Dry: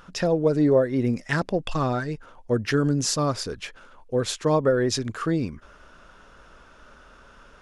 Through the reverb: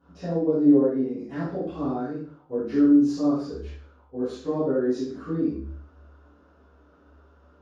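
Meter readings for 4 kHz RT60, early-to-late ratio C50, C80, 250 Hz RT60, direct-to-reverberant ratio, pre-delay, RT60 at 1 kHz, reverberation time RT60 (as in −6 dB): 0.45 s, 0.5 dB, 5.0 dB, 0.55 s, −19.0 dB, 3 ms, 0.50 s, 0.50 s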